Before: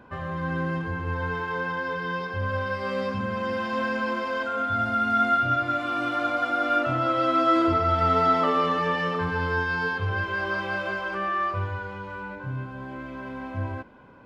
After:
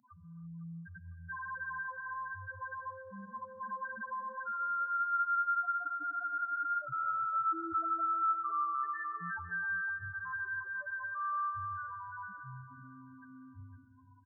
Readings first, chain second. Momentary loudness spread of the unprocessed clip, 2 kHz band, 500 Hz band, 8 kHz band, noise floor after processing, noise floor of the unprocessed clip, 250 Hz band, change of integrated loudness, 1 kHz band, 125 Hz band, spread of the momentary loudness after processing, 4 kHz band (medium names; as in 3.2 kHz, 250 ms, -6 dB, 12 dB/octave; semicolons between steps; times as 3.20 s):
13 LU, -9.0 dB, -27.5 dB, no reading, -56 dBFS, -38 dBFS, -22.0 dB, -10.0 dB, -9.0 dB, -20.0 dB, 19 LU, under -40 dB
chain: treble shelf 2.9 kHz +2.5 dB; loudest bins only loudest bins 1; high-pass 450 Hz 6 dB/octave; static phaser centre 1.1 kHz, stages 4; feedback delay 506 ms, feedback 44%, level -13 dB; gated-style reverb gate 350 ms rising, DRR 9.5 dB; compression 1.5:1, threshold -36 dBFS, peak gain reduction 5 dB